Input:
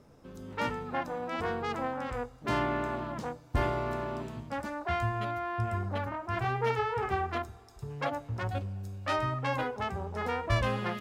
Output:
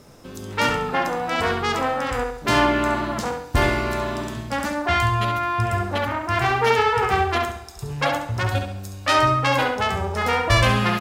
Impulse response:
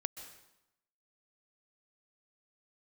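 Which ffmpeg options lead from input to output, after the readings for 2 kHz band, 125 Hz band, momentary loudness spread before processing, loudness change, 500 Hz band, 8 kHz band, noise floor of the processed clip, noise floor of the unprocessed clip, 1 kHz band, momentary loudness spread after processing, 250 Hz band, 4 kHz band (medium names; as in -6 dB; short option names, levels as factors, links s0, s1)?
+13.5 dB, +9.5 dB, 8 LU, +11.5 dB, +10.0 dB, +19.0 dB, -38 dBFS, -55 dBFS, +11.5 dB, 9 LU, +10.5 dB, +17.0 dB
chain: -filter_complex "[0:a]highshelf=f=2400:g=11,asplit=2[s0][s1];[s1]adelay=68,lowpass=f=4900:p=1,volume=0.562,asplit=2[s2][s3];[s3]adelay=68,lowpass=f=4900:p=1,volume=0.44,asplit=2[s4][s5];[s5]adelay=68,lowpass=f=4900:p=1,volume=0.44,asplit=2[s6][s7];[s7]adelay=68,lowpass=f=4900:p=1,volume=0.44,asplit=2[s8][s9];[s9]adelay=68,lowpass=f=4900:p=1,volume=0.44[s10];[s2][s4][s6][s8][s10]amix=inputs=5:normalize=0[s11];[s0][s11]amix=inputs=2:normalize=0,volume=2.66"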